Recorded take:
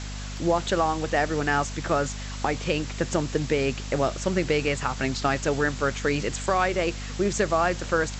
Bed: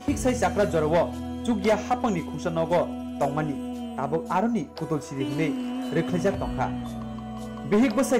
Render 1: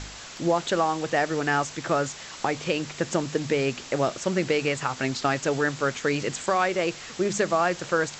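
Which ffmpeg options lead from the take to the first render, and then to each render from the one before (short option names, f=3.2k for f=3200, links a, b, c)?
-af "bandreject=f=50:t=h:w=4,bandreject=f=100:t=h:w=4,bandreject=f=150:t=h:w=4,bandreject=f=200:t=h:w=4,bandreject=f=250:t=h:w=4"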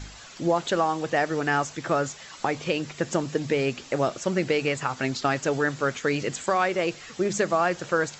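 -af "afftdn=nr=8:nf=-42"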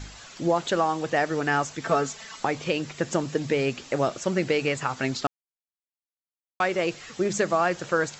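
-filter_complex "[0:a]asettb=1/sr,asplit=3[a][b][c];[a]atrim=end=1.814[d];[b]atrim=start=1.81:end=2.4,asetpts=PTS-STARTPTS,afade=t=in:d=0.004:c=qsin,afade=t=out:st=0.586:d=0.004:c=qsin,aecho=1:1:4.5:0.65,atrim=end_sample=26019[e];[c]atrim=start=2.396[f];[d][e]acrossfade=d=0.004:c1=hsin:c2=qsin[g];[g][f]acrossfade=d=0.004:c1=qsin:c2=hsin,asplit=3[h][i][j];[h]atrim=end=5.27,asetpts=PTS-STARTPTS,afade=t=out:st=5.266:d=0.004:c=hsin[k];[i]atrim=start=5.27:end=6.6,asetpts=PTS-STARTPTS,volume=0[l];[j]atrim=start=6.6,asetpts=PTS-STARTPTS,afade=t=in:d=0.004:c=hsin[m];[k][l][m]concat=n=3:v=0:a=1"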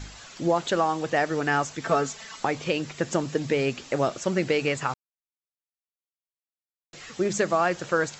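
-filter_complex "[0:a]asplit=3[a][b][c];[a]atrim=end=4.94,asetpts=PTS-STARTPTS,afade=t=out:st=4.936:d=0.004:c=hsin[d];[b]atrim=start=4.94:end=6.93,asetpts=PTS-STARTPTS,volume=0[e];[c]atrim=start=6.93,asetpts=PTS-STARTPTS,afade=t=in:d=0.004:c=hsin[f];[d][e][f]concat=n=3:v=0:a=1"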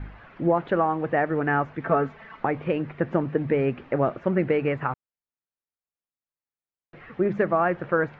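-af "lowpass=f=2.1k:w=0.5412,lowpass=f=2.1k:w=1.3066,lowshelf=f=370:g=4"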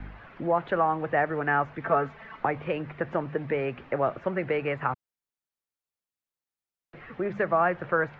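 -filter_complex "[0:a]acrossover=split=180|460|1300[a][b][c][d];[a]alimiter=level_in=11.5dB:limit=-24dB:level=0:latency=1,volume=-11.5dB[e];[b]acompressor=threshold=-39dB:ratio=6[f];[e][f][c][d]amix=inputs=4:normalize=0"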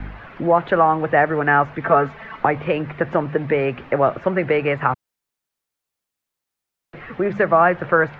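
-af "volume=9dB,alimiter=limit=-2dB:level=0:latency=1"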